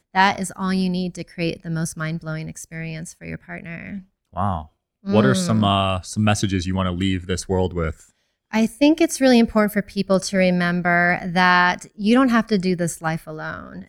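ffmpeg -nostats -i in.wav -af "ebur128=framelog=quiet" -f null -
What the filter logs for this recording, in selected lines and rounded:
Integrated loudness:
  I:         -20.1 LUFS
  Threshold: -30.9 LUFS
Loudness range:
  LRA:        11.0 LU
  Threshold: -40.7 LUFS
  LRA low:   -28.9 LUFS
  LRA high:  -17.8 LUFS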